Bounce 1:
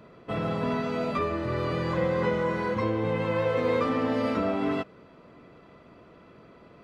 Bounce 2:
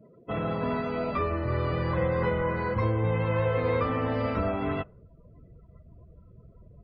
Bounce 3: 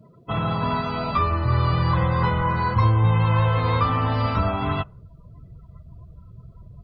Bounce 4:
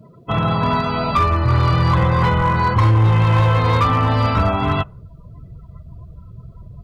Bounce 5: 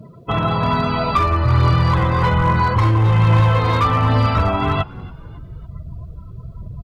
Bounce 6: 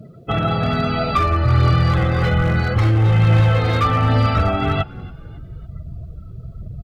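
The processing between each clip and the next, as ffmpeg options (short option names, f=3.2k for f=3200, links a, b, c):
-filter_complex "[0:a]asubboost=boost=9.5:cutoff=83,afftdn=nr=29:nf=-45,acrossover=split=3500[a][b];[b]acompressor=threshold=-57dB:ratio=4:attack=1:release=60[c];[a][c]amix=inputs=2:normalize=0"
-af "equalizer=f=125:t=o:w=1:g=4,equalizer=f=250:t=o:w=1:g=-5,equalizer=f=500:t=o:w=1:g=-11,equalizer=f=1k:t=o:w=1:g=6,equalizer=f=2k:t=o:w=1:g=-7,equalizer=f=4k:t=o:w=1:g=8,volume=7.5dB"
-af "volume=16dB,asoftclip=hard,volume=-16dB,volume=6dB"
-filter_complex "[0:a]asplit=2[a][b];[b]acompressor=threshold=-24dB:ratio=6,volume=0.5dB[c];[a][c]amix=inputs=2:normalize=0,asplit=4[d][e][f][g];[e]adelay=278,afreqshift=80,volume=-23dB[h];[f]adelay=556,afreqshift=160,volume=-31dB[i];[g]adelay=834,afreqshift=240,volume=-38.9dB[j];[d][h][i][j]amix=inputs=4:normalize=0,aphaser=in_gain=1:out_gain=1:delay=3.3:decay=0.27:speed=1.2:type=triangular,volume=-3dB"
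-af "asuperstop=centerf=1000:order=4:qfactor=4.2"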